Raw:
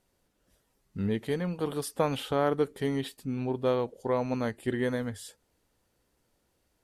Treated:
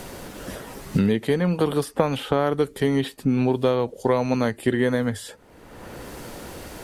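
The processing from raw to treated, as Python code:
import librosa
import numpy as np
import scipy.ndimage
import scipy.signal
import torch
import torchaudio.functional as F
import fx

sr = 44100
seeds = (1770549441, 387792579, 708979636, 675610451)

y = fx.band_squash(x, sr, depth_pct=100)
y = y * librosa.db_to_amplitude(7.5)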